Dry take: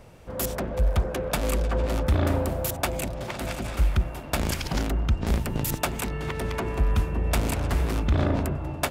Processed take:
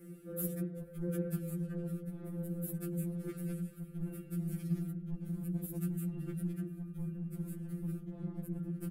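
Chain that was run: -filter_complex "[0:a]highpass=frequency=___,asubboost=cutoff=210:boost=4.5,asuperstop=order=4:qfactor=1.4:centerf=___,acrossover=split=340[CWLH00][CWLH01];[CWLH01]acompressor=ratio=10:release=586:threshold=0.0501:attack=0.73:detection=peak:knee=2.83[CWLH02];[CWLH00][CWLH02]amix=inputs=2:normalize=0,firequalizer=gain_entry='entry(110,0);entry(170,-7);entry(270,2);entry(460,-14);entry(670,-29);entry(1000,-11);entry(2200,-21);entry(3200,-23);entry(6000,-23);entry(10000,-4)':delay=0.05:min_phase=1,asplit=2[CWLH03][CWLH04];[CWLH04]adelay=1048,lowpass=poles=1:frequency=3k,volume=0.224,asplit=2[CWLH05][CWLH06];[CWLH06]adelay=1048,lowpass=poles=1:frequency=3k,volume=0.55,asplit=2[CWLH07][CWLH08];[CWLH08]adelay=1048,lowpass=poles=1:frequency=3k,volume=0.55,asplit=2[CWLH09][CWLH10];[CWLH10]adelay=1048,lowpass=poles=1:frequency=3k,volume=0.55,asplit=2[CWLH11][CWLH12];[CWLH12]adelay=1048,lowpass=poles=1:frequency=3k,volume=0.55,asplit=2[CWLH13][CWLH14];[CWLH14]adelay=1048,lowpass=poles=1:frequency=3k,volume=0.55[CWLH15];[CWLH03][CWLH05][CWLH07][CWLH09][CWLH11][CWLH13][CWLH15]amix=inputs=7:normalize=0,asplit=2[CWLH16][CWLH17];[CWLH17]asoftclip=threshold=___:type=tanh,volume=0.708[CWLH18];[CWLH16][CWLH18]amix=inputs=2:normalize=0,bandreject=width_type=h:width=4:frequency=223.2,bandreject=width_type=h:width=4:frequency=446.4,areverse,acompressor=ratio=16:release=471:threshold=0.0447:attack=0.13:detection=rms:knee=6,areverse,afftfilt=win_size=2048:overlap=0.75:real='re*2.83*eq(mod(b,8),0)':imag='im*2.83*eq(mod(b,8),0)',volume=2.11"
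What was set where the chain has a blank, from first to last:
82, 970, 0.112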